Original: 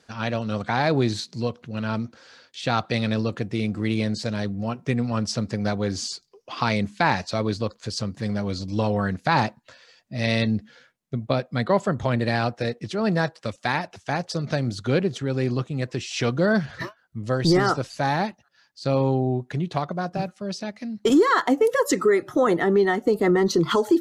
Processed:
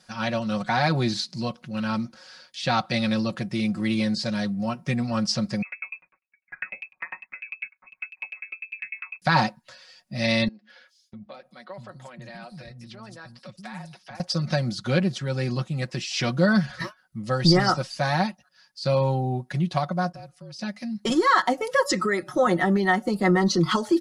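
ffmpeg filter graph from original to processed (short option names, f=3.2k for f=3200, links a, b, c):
-filter_complex "[0:a]asettb=1/sr,asplit=3[a][b][c];[a]atrim=end=5.624[d];[b]atrim=start=5.62:end=9.22,asetpts=PTS-STARTPTS,afade=t=in:d=0.004:c=qsin,afade=t=out:st=3.596:d=0.004:c=qsin,acompressor=threshold=-26dB:ratio=2.5:attack=3.2:release=140:knee=1:detection=peak,lowpass=f=2.3k:t=q:w=0.5098,lowpass=f=2.3k:t=q:w=0.6013,lowpass=f=2.3k:t=q:w=0.9,lowpass=f=2.3k:t=q:w=2.563,afreqshift=-2700,aeval=exprs='val(0)*pow(10,-37*if(lt(mod(10*n/s,1),2*abs(10)/1000),1-mod(10*n/s,1)/(2*abs(10)/1000),(mod(10*n/s,1)-2*abs(10)/1000)/(1-2*abs(10)/1000))/20)':c=same[e];[c]atrim=start=9.216[f];[d][e]acrossfade=d=0.004:c1=hsin:c2=qsin[g];[g][f]acrossfade=d=0.004:c1=qsin:c2=hsin,asettb=1/sr,asplit=3[h][i][j];[h]atrim=end=10.484[k];[i]atrim=start=10.48:end=14.2,asetpts=PTS-STARTPTS,afade=t=in:d=0.004:c=qsin,afade=t=out:st=3.716:d=0.004:c=qsin,agate=range=-33dB:threshold=-54dB:ratio=3:release=100:detection=peak,acompressor=threshold=-44dB:ratio=2.5:attack=3.2:release=140:knee=1:detection=peak,acrossover=split=250|5100[l][m][n];[n]adelay=220[o];[l]adelay=650[p];[p][m][o]amix=inputs=3:normalize=0,atrim=end_sample=164052[q];[j]atrim=start=14.196[r];[k][q]acrossfade=d=0.004:c1=hsin:c2=qsin[s];[s][r]acrossfade=d=0.004:c1=qsin:c2=hsin,asettb=1/sr,asplit=3[t][u][v];[t]atrim=end=20.124[w];[u]atrim=start=20.12:end=20.59,asetpts=PTS-STARTPTS,afade=t=in:d=0.004:c=qsin,afade=t=out:st=0.466:d=0.004:c=qsin,agate=range=-33dB:threshold=-50dB:ratio=3:release=100:detection=peak,acompressor=threshold=-47dB:ratio=2.5:attack=3.2:release=140:knee=1:detection=peak,afreqshift=-42[x];[v]atrim=start=20.586[y];[w][x]acrossfade=d=0.004:c1=hsin:c2=qsin[z];[z][y]acrossfade=d=0.004:c1=qsin:c2=hsin,aecho=1:1:5.4:0.73,acrossover=split=7300[aa][ab];[ab]acompressor=threshold=-60dB:ratio=4:attack=1:release=60[ac];[aa][ac]amix=inputs=2:normalize=0,equalizer=f=400:t=o:w=0.33:g=-12,equalizer=f=5k:t=o:w=0.33:g=6,equalizer=f=10k:t=o:w=0.33:g=11,volume=-1dB"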